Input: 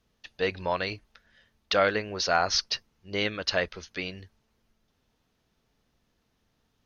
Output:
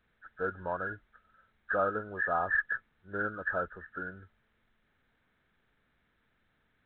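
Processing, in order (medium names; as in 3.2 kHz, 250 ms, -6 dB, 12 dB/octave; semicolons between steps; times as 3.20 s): knee-point frequency compression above 1.2 kHz 4:1; trim -6.5 dB; µ-law 64 kbps 8 kHz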